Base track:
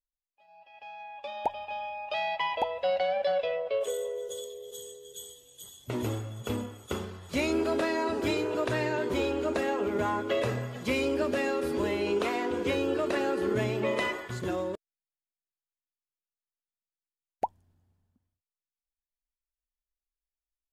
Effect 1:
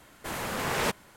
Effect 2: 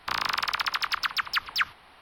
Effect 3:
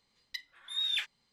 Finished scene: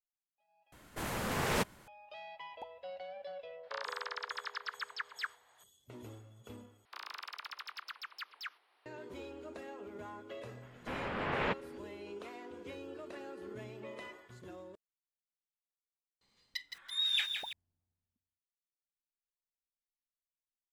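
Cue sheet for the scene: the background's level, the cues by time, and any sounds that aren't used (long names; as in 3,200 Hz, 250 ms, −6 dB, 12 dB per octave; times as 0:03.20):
base track −18 dB
0:00.72: overwrite with 1 −5 dB + low-shelf EQ 280 Hz +5.5 dB
0:03.63: mix in 2 −15.5 dB + loudspeaker in its box 500–7,400 Hz, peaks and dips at 620 Hz +7 dB, 930 Hz +4 dB, 1,700 Hz +6 dB, 2,600 Hz −6 dB
0:06.85: overwrite with 2 −18 dB + Chebyshev high-pass filter 370 Hz, order 3
0:10.62: mix in 1 −5 dB + low-pass filter 3,100 Hz 24 dB per octave
0:16.21: mix in 3 −0.5 dB + feedback echo at a low word length 166 ms, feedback 55%, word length 9 bits, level −6.5 dB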